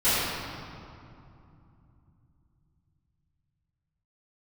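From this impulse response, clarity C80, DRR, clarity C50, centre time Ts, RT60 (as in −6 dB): −2.5 dB, −18.5 dB, −5.0 dB, 163 ms, 2.7 s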